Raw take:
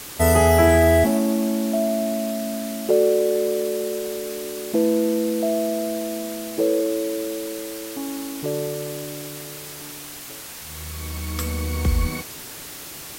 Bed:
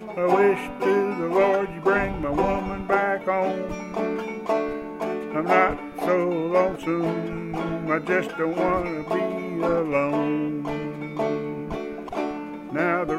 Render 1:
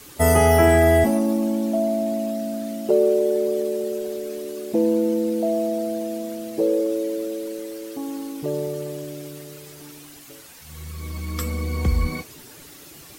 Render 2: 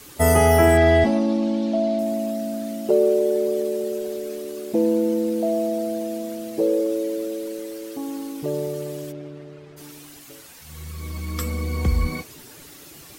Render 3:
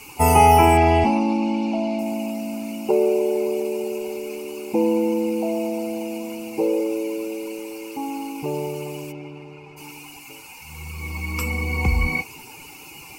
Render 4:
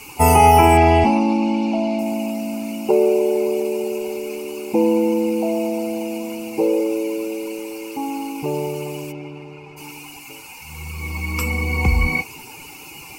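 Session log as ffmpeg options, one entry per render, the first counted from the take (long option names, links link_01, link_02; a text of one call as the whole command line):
ffmpeg -i in.wav -af "afftdn=noise_reduction=10:noise_floor=-37" out.wav
ffmpeg -i in.wav -filter_complex "[0:a]asettb=1/sr,asplit=3[link_01][link_02][link_03];[link_01]atrim=end=0.774[link_04];[link_02]atrim=start=0.77:end=1.99,asetpts=PTS-STARTPTS,afade=type=in:duration=0.004:curve=qsin,afade=type=out:start_time=1.216:duration=0.004:curve=qsin,lowpass=frequency=4100:width_type=q:width=1.9[link_05];[link_03]atrim=start=1.986[link_06];[link_04][link_05]acrossfade=duration=0.004:curve1=hsin:curve2=qsin[link_07];[link_07][link_06]acrossfade=duration=0.004:curve1=qsin:curve2=hsin,asettb=1/sr,asplit=3[link_08][link_09][link_10];[link_08]atrim=end=4.354[link_11];[link_09]atrim=start=4.35:end=5.52,asetpts=PTS-STARTPTS,afade=type=in:duration=0.004:curve=qsin,afade=type=out:start_time=1.166:duration=0.004:curve=qsin,aeval=exprs='sgn(val(0))*max(abs(val(0))-0.002,0)':channel_layout=same[link_12];[link_10]atrim=start=5.516[link_13];[link_11][link_12]acrossfade=duration=0.004:curve1=hsin:curve2=qsin[link_14];[link_14][link_13]acrossfade=duration=0.004:curve1=qsin:curve2=hsin,asplit=3[link_15][link_16][link_17];[link_15]afade=type=out:start_time=9.11:duration=0.02[link_18];[link_16]adynamicsmooth=sensitivity=3.5:basefreq=2000,afade=type=in:start_time=9.11:duration=0.02,afade=type=out:start_time=9.76:duration=0.02[link_19];[link_17]afade=type=in:start_time=9.76:duration=0.02[link_20];[link_18][link_19][link_20]amix=inputs=3:normalize=0" out.wav
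ffmpeg -i in.wav -af "superequalizer=8b=0.562:9b=3.55:11b=0.398:12b=3.98:13b=0.398" out.wav
ffmpeg -i in.wav -af "volume=3dB,alimiter=limit=-2dB:level=0:latency=1" out.wav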